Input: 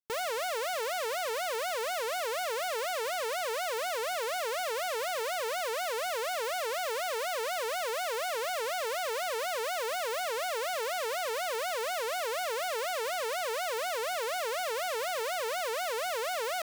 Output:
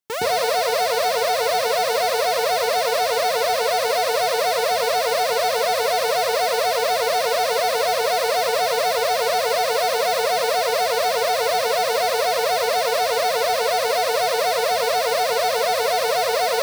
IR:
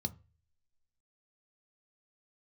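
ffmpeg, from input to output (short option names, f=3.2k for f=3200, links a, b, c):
-filter_complex "[0:a]highpass=84,asplit=2[a][b];[1:a]atrim=start_sample=2205,adelay=116[c];[b][c]afir=irnorm=-1:irlink=0,volume=3dB[d];[a][d]amix=inputs=2:normalize=0,volume=7dB"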